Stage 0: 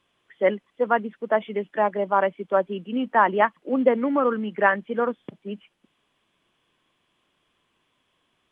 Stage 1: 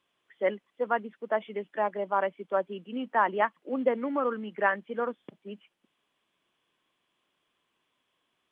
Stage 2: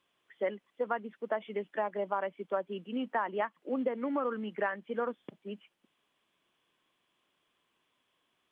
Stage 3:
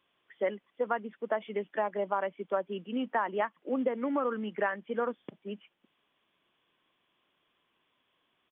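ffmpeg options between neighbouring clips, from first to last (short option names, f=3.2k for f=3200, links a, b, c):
-af "lowshelf=f=140:g=-10.5,volume=-6dB"
-af "acompressor=threshold=-28dB:ratio=6"
-af "aresample=8000,aresample=44100,volume=2dB"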